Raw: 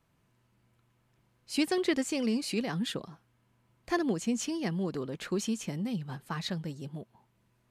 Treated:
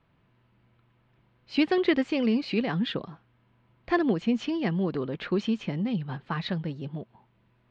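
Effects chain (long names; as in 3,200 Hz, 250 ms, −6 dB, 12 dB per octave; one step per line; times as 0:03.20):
low-pass filter 3,700 Hz 24 dB per octave
level +5 dB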